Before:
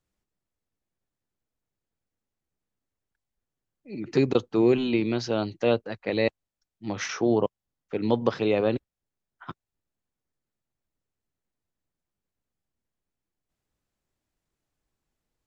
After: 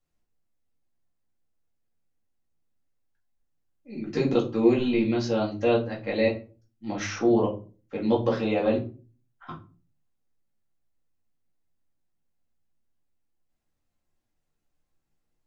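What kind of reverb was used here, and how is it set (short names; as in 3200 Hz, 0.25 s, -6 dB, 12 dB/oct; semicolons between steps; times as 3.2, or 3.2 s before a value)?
shoebox room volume 180 m³, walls furnished, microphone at 2.2 m; gain -5.5 dB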